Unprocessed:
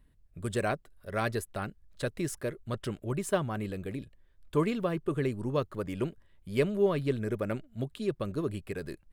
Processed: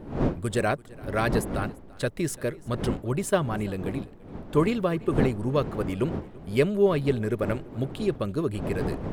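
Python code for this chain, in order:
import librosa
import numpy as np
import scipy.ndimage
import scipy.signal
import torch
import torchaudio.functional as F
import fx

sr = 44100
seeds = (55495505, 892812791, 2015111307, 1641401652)

y = fx.dmg_wind(x, sr, seeds[0], corner_hz=340.0, level_db=-39.0)
y = y + 10.0 ** (-23.0 / 20.0) * np.pad(y, (int(339 * sr / 1000.0), 0))[:len(y)]
y = y * librosa.db_to_amplitude(5.0)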